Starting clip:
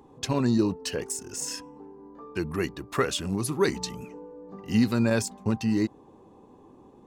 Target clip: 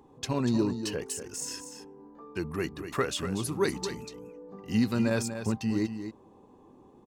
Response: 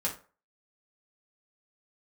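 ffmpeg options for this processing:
-af "aecho=1:1:241:0.335,volume=-3.5dB"

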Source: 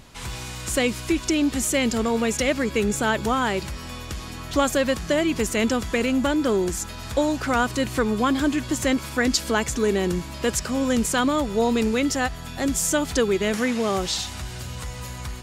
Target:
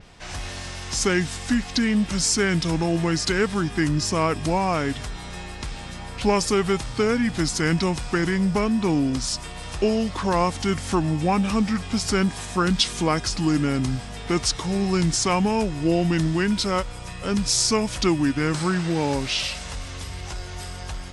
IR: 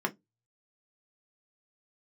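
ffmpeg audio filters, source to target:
-af "asetrate=32193,aresample=44100,adynamicequalizer=threshold=0.00501:dfrequency=9100:dqfactor=1.2:tfrequency=9100:tqfactor=1.2:attack=5:release=100:ratio=0.375:range=3.5:mode=boostabove:tftype=bell"

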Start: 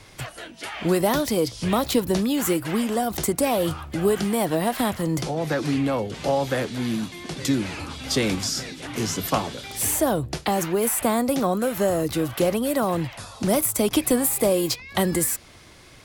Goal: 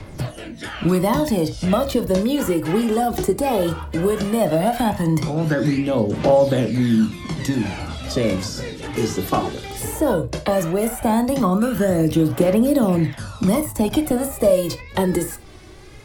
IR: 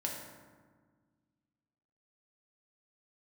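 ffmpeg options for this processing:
-filter_complex "[0:a]lowshelf=frequency=440:gain=9,aphaser=in_gain=1:out_gain=1:delay=2.7:decay=0.57:speed=0.16:type=triangular,acrossover=split=170|1300[link_01][link_02][link_03];[link_01]acompressor=threshold=-31dB:ratio=4[link_04];[link_02]acompressor=threshold=-16dB:ratio=4[link_05];[link_03]acompressor=threshold=-28dB:ratio=4[link_06];[link_04][link_05][link_06]amix=inputs=3:normalize=0,asplit=2[link_07][link_08];[1:a]atrim=start_sample=2205,atrim=end_sample=3528,highshelf=frequency=5200:gain=-10.5[link_09];[link_08][link_09]afir=irnorm=-1:irlink=0,volume=-2dB[link_10];[link_07][link_10]amix=inputs=2:normalize=0,volume=-4dB"

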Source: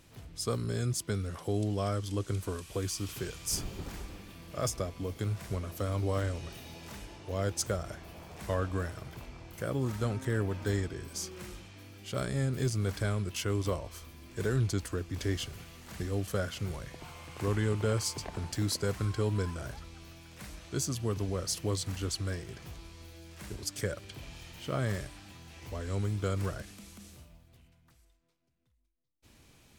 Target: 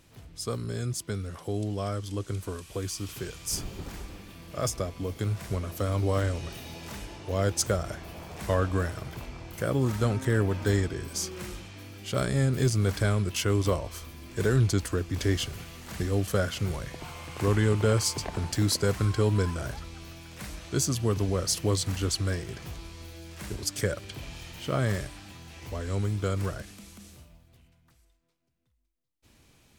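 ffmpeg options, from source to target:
ffmpeg -i in.wav -af "dynaudnorm=framelen=780:gausssize=13:maxgain=6dB" out.wav

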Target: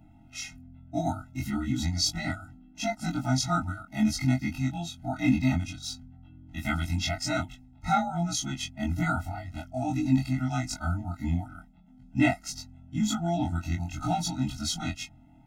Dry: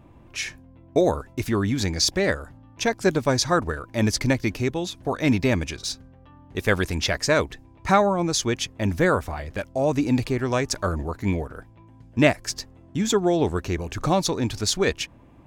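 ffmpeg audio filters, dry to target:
ffmpeg -i in.wav -af "afftfilt=real='re':imag='-im':win_size=2048:overlap=0.75,afftfilt=real='re*eq(mod(floor(b*sr/1024/310),2),0)':imag='im*eq(mod(floor(b*sr/1024/310),2),0)':win_size=1024:overlap=0.75,volume=1dB" out.wav

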